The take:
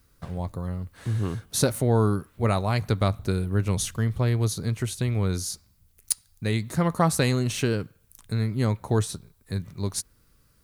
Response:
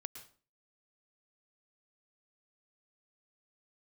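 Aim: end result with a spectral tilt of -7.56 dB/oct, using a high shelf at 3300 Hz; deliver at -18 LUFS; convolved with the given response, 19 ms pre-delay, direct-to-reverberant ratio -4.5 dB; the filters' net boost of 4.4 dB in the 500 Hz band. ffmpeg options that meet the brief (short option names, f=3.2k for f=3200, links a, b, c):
-filter_complex "[0:a]equalizer=f=500:t=o:g=5.5,highshelf=f=3.3k:g=-8,asplit=2[a][b];[1:a]atrim=start_sample=2205,adelay=19[c];[b][c]afir=irnorm=-1:irlink=0,volume=8dB[d];[a][d]amix=inputs=2:normalize=0,volume=1dB"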